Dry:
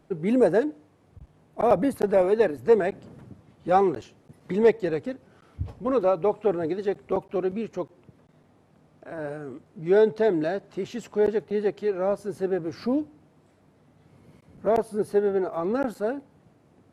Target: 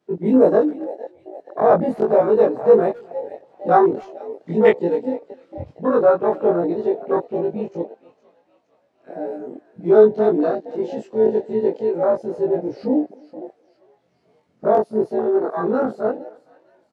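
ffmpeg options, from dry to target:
-filter_complex "[0:a]afftfilt=real='re':imag='-im':win_size=2048:overlap=0.75,acontrast=59,highpass=150,lowpass=5100,highshelf=f=2700:g=10,asplit=2[s0][s1];[s1]asplit=5[s2][s3][s4][s5][s6];[s2]adelay=462,afreqshift=57,volume=0.168[s7];[s3]adelay=924,afreqshift=114,volume=0.0841[s8];[s4]adelay=1386,afreqshift=171,volume=0.0422[s9];[s5]adelay=1848,afreqshift=228,volume=0.0209[s10];[s6]adelay=2310,afreqshift=285,volume=0.0105[s11];[s7][s8][s9][s10][s11]amix=inputs=5:normalize=0[s12];[s0][s12]amix=inputs=2:normalize=0,afwtdn=0.0501,asplit=2[s13][s14];[s14]adelay=260,highpass=300,lowpass=3400,asoftclip=type=hard:threshold=0.2,volume=0.0562[s15];[s13][s15]amix=inputs=2:normalize=0,volume=1.58"

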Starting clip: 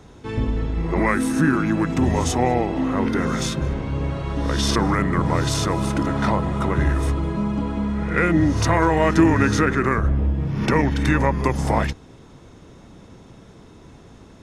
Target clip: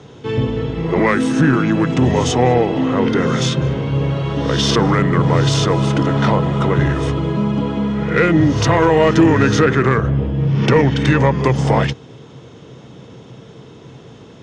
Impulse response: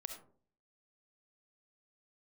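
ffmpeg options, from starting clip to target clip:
-af "highpass=110,equalizer=f=130:t=q:w=4:g=10,equalizer=f=460:t=q:w=4:g=7,equalizer=f=3100:t=q:w=4:g=8,lowpass=f=7300:w=0.5412,lowpass=f=7300:w=1.3066,asoftclip=type=tanh:threshold=0.422,volume=1.68"

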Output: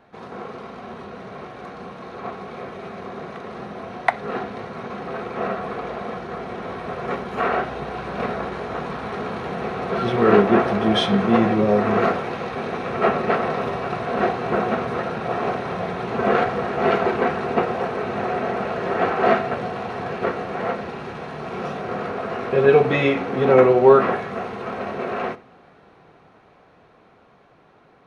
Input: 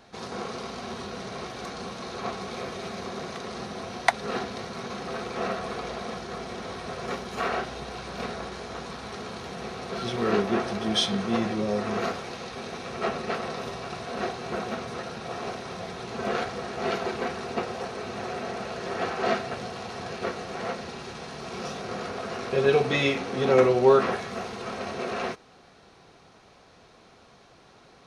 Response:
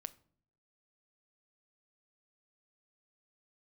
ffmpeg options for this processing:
-filter_complex "[0:a]dynaudnorm=f=820:g=9:m=3.76,asplit=2[s0][s1];[1:a]atrim=start_sample=2205,lowpass=2500,lowshelf=f=64:g=-10[s2];[s1][s2]afir=irnorm=-1:irlink=0,volume=5.96[s3];[s0][s3]amix=inputs=2:normalize=0,volume=0.237"

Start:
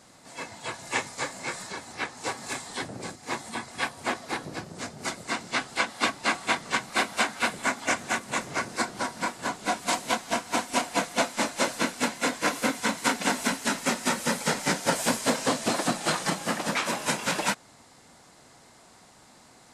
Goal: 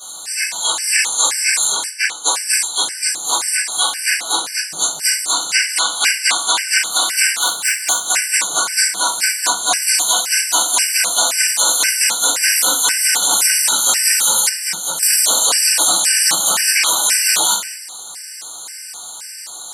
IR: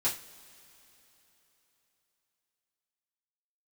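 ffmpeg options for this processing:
-filter_complex "[0:a]asettb=1/sr,asplit=3[s0][s1][s2];[s0]atrim=end=1.874[s3];[s1]atrim=start=1.87:end=2.83,asetpts=PTS-STARTPTS,afade=t=in:d=0.004:c=qsin,afade=t=out:st=0.956:d=0.004:c=qsin,agate=range=0.0224:threshold=0.0224:ratio=3:detection=peak[s4];[s2]atrim=start=2.826[s5];[s3][s4]acrossfade=d=0.004:c1=hsin:c2=qsin[s6];[s6][s5]acrossfade=d=0.004:c1=qsin:c2=hsin,asplit=2[s7][s8];[s8]acompressor=threshold=0.0141:ratio=20,volume=0.841[s9];[s7][s9]amix=inputs=2:normalize=0,asettb=1/sr,asplit=3[s10][s11][s12];[s10]atrim=end=7.414[s13];[s11]atrim=start=7.41:end=8.05,asetpts=PTS-STARTPTS,afade=t=in:d=0.004:c=qsin,afade=t=out:st=0.636:d=0.004:c=qsin,aeval=exprs='(tanh(8.91*val(0)+0.7)-tanh(0.7))/8.91':c=same[s14];[s12]atrim=start=8.046[s15];[s13][s14]acrossfade=d=0.004:c1=hsin:c2=qsin[s16];[s16][s15]acrossfade=d=0.004:c1=qsin:c2=hsin,aderivative,bandreject=f=60:t=h:w=6,bandreject=f=120:t=h:w=6,bandreject=f=180:t=h:w=6,bandreject=f=240:t=h:w=6,bandreject=f=300:t=h:w=6[s17];[1:a]atrim=start_sample=2205,afade=t=out:st=0.32:d=0.01,atrim=end_sample=14553[s18];[s17][s18]afir=irnorm=-1:irlink=0,asettb=1/sr,asplit=3[s19][s20][s21];[s19]atrim=end=14.494[s22];[s20]atrim=start=14.49:end=15.03,asetpts=PTS-STARTPTS,afade=t=in:d=0.004:c=qsin,afade=t=out:st=0.536:d=0.004:c=qsin,acrossover=split=140[s23][s24];[s24]acompressor=threshold=0.01:ratio=3[s25];[s23][s25]amix=inputs=2:normalize=0[s26];[s21]atrim=start=15.026[s27];[s22][s26]acrossfade=d=0.004:c1=hsin:c2=qsin[s28];[s28][s27]acrossfade=d=0.004:c1=qsin:c2=hsin,alimiter=level_in=10:limit=0.891:release=50:level=0:latency=1,afftfilt=real='re*gt(sin(2*PI*1.9*pts/sr)*(1-2*mod(floor(b*sr/1024/1500),2)),0)':imag='im*gt(sin(2*PI*1.9*pts/sr)*(1-2*mod(floor(b*sr/1024/1500),2)),0)':win_size=1024:overlap=0.75"

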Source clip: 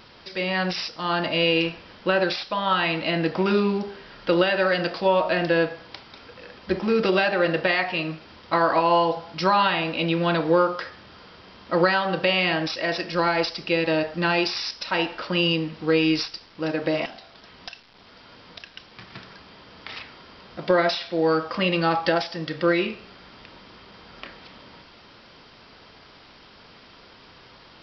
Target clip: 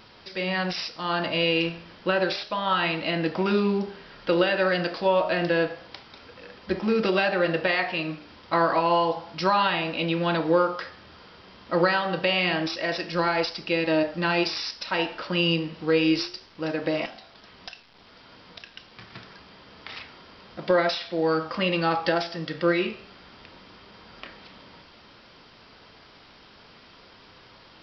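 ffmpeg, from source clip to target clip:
-af "flanger=delay=9.3:depth=8.5:regen=82:speed=0.29:shape=sinusoidal,volume=1.33"

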